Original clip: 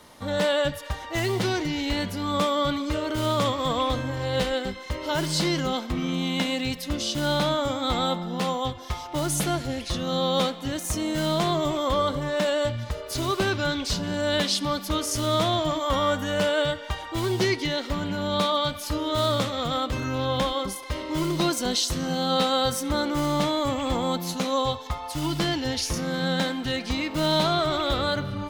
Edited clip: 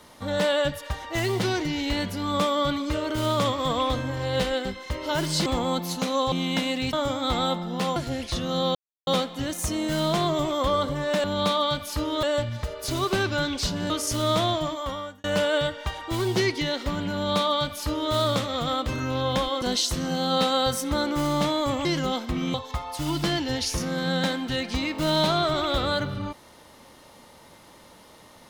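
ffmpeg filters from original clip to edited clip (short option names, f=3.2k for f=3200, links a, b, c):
-filter_complex "[0:a]asplit=13[a][b][c][d][e][f][g][h][i][j][k][l][m];[a]atrim=end=5.462[n];[b]atrim=start=23.838:end=24.702[o];[c]atrim=start=6.148:end=6.762[p];[d]atrim=start=7.528:end=8.562[q];[e]atrim=start=9.538:end=10.33,asetpts=PTS-STARTPTS,afade=t=out:st=0.788:d=0.004:c=hsin,apad=pad_dur=0.32[r];[f]atrim=start=10.33:end=12.502,asetpts=PTS-STARTPTS,afade=t=in:d=0.004:c=hsin[s];[g]atrim=start=18.178:end=19.172[t];[h]atrim=start=12.498:end=14.172[u];[i]atrim=start=14.938:end=16.28,asetpts=PTS-STARTPTS,afade=t=out:st=0.562:d=0.78[v];[j]atrim=start=16.28:end=20.662,asetpts=PTS-STARTPTS,afade=t=in:d=0.004:c=hsin[w];[k]atrim=start=21.608:end=23.842[x];[l]atrim=start=5.458:end=6.152[y];[m]atrim=start=24.698[z];[n][o]acrossfade=d=0.004:c1=hsin:c2=hsin[aa];[aa][p]acrossfade=d=0.004:c1=hsin:c2=hsin[ab];[ab][q]acrossfade=d=0.004:c1=hsin:c2=hsin[ac];[r][s]concat=n=2:v=0:a=1[ad];[ac][ad]acrossfade=d=0.004:c1=hsin:c2=hsin[ae];[ae][t]acrossfade=d=0.004:c1=hsin:c2=hsin[af];[af][u]acrossfade=d=0.004:c1=hsin:c2=hsin[ag];[v][w]concat=n=2:v=0:a=1[ah];[ag][ah]acrossfade=d=0.004:c1=hsin:c2=hsin[ai];[ai][x]acrossfade=d=0.004:c1=hsin:c2=hsin[aj];[aj][y]acrossfade=d=0.004:c1=hsin:c2=hsin[ak];[ak][z]acrossfade=d=0.004:c1=hsin:c2=hsin"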